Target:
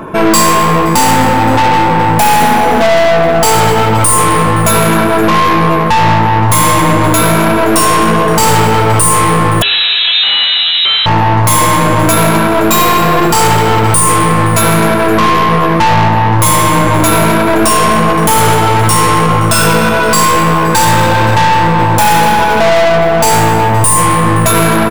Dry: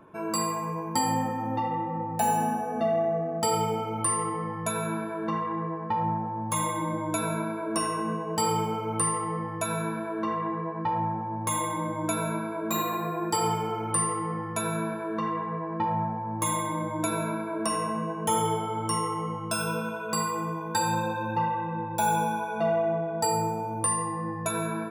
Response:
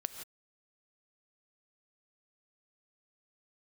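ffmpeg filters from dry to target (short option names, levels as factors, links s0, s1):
-filter_complex "[0:a]asubboost=boost=5:cutoff=88,aeval=exprs='(tanh(63.1*val(0)+0.5)-tanh(0.5))/63.1':c=same,asplit=8[s0][s1][s2][s3][s4][s5][s6][s7];[s1]adelay=260,afreqshift=67,volume=0.15[s8];[s2]adelay=520,afreqshift=134,volume=0.0977[s9];[s3]adelay=780,afreqshift=201,volume=0.0631[s10];[s4]adelay=1040,afreqshift=268,volume=0.0412[s11];[s5]adelay=1300,afreqshift=335,volume=0.0266[s12];[s6]adelay=1560,afreqshift=402,volume=0.0174[s13];[s7]adelay=1820,afreqshift=469,volume=0.0112[s14];[s0][s8][s9][s10][s11][s12][s13][s14]amix=inputs=8:normalize=0,asettb=1/sr,asplit=3[s15][s16][s17];[s15]atrim=end=9.624[s18];[s16]atrim=start=9.62:end=11.06,asetpts=PTS-STARTPTS,afade=t=in:d=0.004:c=qsin,afade=t=out:st=1.436:d=0.004:c=qsin,lowpass=f=3400:t=q:w=0.5098,lowpass=f=3400:t=q:w=0.6013,lowpass=f=3400:t=q:w=0.9,lowpass=f=3400:t=q:w=2.563,afreqshift=-4000[s19];[s17]atrim=start=11.056[s20];[s18][s19]acrossfade=d=0.004:c1=hsin:c2=qsin[s21];[s21][s20]acrossfade=d=0.004:c1=qsin:c2=hsin,alimiter=level_in=37.6:limit=0.891:release=50:level=0:latency=1,volume=0.891"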